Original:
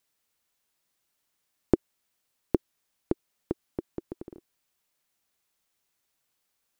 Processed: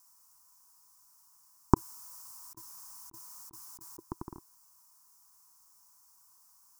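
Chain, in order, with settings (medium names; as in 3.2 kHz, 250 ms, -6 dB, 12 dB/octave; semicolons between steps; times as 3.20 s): FFT filter 120 Hz 0 dB, 330 Hz -8 dB, 560 Hz -22 dB, 1 kHz +15 dB, 2 kHz -12 dB, 3.6 kHz -15 dB, 5.3 kHz +10 dB; 1.74–3.99 s: compressor with a negative ratio -58 dBFS, ratio -1; trim +6 dB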